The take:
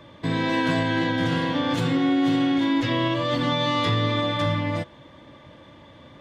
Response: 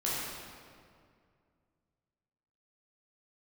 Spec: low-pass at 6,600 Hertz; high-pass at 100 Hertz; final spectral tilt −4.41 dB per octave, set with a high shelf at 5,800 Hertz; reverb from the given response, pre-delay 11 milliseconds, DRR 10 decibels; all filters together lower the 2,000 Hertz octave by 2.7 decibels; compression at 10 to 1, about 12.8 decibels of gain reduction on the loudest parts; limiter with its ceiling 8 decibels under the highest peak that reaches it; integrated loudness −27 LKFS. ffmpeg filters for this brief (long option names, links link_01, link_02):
-filter_complex "[0:a]highpass=100,lowpass=6600,equalizer=frequency=2000:width_type=o:gain=-4,highshelf=frequency=5800:gain=7,acompressor=threshold=-32dB:ratio=10,alimiter=level_in=5.5dB:limit=-24dB:level=0:latency=1,volume=-5.5dB,asplit=2[link_01][link_02];[1:a]atrim=start_sample=2205,adelay=11[link_03];[link_02][link_03]afir=irnorm=-1:irlink=0,volume=-17.5dB[link_04];[link_01][link_04]amix=inputs=2:normalize=0,volume=11dB"